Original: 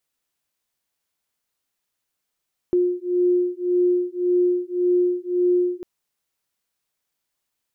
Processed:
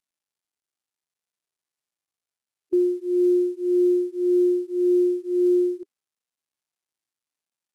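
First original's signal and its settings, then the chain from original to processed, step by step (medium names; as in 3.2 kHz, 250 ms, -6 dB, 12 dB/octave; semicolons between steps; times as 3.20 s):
beating tones 356 Hz, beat 1.8 Hz, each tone -20.5 dBFS 3.10 s
CVSD coder 64 kbps; harmonic-percussive split percussive -16 dB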